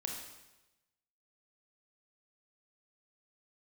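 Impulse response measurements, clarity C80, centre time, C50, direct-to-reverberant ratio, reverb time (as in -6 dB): 5.5 dB, 46 ms, 3.0 dB, 0.5 dB, 1.0 s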